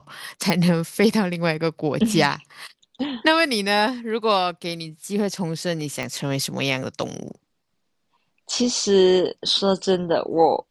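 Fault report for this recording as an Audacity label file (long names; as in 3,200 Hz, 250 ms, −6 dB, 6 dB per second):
0.500000	0.500000	click −6 dBFS
6.030000	6.030000	click −14 dBFS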